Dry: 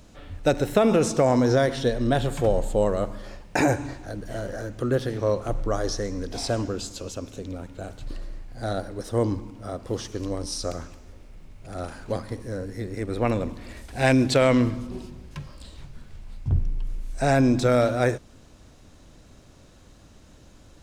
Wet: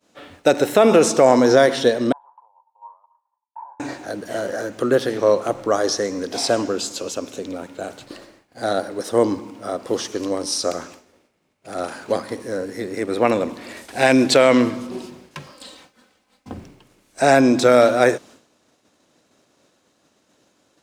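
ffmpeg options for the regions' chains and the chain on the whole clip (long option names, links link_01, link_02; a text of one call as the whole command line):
ffmpeg -i in.wav -filter_complex "[0:a]asettb=1/sr,asplit=3[link_01][link_02][link_03];[link_01]atrim=end=2.124[link_04];[link_02]atrim=start=2.12:end=3.8,asetpts=PTS-STARTPTS,afade=type=in:duration=0.004:curve=qsin,afade=type=out:start_time=1.676:duration=0.004:curve=qsin,acompressor=threshold=-30dB:ratio=2.5:attack=3.2:release=140:knee=1:detection=peak,asuperpass=centerf=950:order=4:qfactor=7.7[link_05];[link_03]atrim=start=3.796[link_06];[link_04][link_05]acrossfade=duration=0.004:curve1=hsin:curve2=qsin[link_07];[link_07][link_06]acrossfade=duration=0.004:curve1=qsin:curve2=hsin,asettb=1/sr,asplit=3[link_08][link_09][link_10];[link_08]atrim=end=15.544[link_11];[link_09]atrim=start=15.54:end=16.58,asetpts=PTS-STARTPTS,afade=type=in:duration=0.004:curve=qsin,afade=type=out:start_time=1.036:duration=0.004:curve=qsin,bass=frequency=250:gain=-6,treble=frequency=4000:gain=0,aecho=1:1:3.9:0.63,atrim=end_sample=45864[link_12];[link_10]atrim=start=16.576[link_13];[link_11][link_12]acrossfade=duration=0.004:curve1=hsin:curve2=qsin[link_14];[link_14][link_13]acrossfade=duration=0.004:curve1=qsin:curve2=hsin,highpass=280,agate=range=-33dB:threshold=-47dB:ratio=3:detection=peak,alimiter=level_in=9.5dB:limit=-1dB:release=50:level=0:latency=1,volume=-1dB" out.wav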